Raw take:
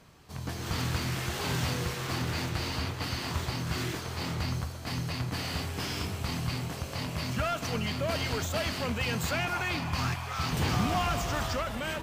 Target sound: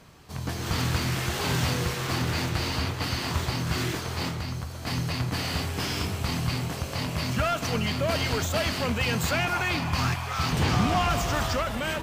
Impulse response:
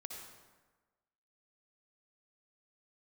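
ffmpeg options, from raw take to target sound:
-filter_complex "[0:a]asettb=1/sr,asplit=3[s0][s1][s2];[s0]atrim=end=4.284[s3];[s1]atrim=start=4.28:end=4.82,asetpts=PTS-STARTPTS,afade=t=in:d=0.004:c=qsin,afade=t=out:st=0.536:d=0.004:c=qsin,acompressor=threshold=0.0178:ratio=3[s4];[s2]atrim=start=4.816[s5];[s3][s4]acrossfade=d=0.004:c1=hsin:c2=qsin[s6];[s6][s5]acrossfade=d=0.004:c1=qsin:c2=hsin,asettb=1/sr,asplit=3[s7][s8][s9];[s7]atrim=end=10.524[s10];[s8]atrim=start=10.52:end=11.1,asetpts=PTS-STARTPTS,afade=t=in:d=0.004:c=qsin,afade=t=out:st=0.576:d=0.004:c=qsin,highshelf=f=11000:g=-9[s11];[s9]atrim=start=11.096[s12];[s10][s11]acrossfade=d=0.004:c1=hsin:c2=qsin[s13];[s13][s12]acrossfade=d=0.004:c1=qsin:c2=hsin,volume=1.68"

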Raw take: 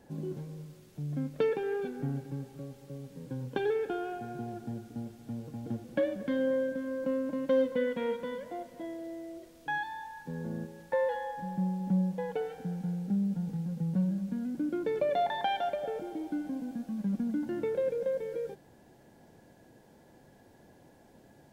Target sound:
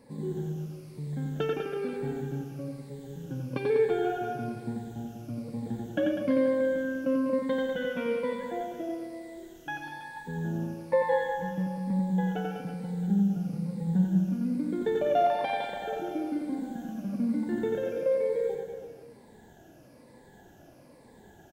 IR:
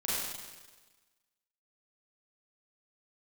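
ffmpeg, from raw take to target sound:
-af "afftfilt=real='re*pow(10,13/40*sin(2*PI*(0.95*log(max(b,1)*sr/1024/100)/log(2)-(-1.1)*(pts-256)/sr)))':imag='im*pow(10,13/40*sin(2*PI*(0.95*log(max(b,1)*sr/1024/100)/log(2)-(-1.1)*(pts-256)/sr)))':win_size=1024:overlap=0.75,aecho=1:1:90|198|327.6|483.1|669.7:0.631|0.398|0.251|0.158|0.1"

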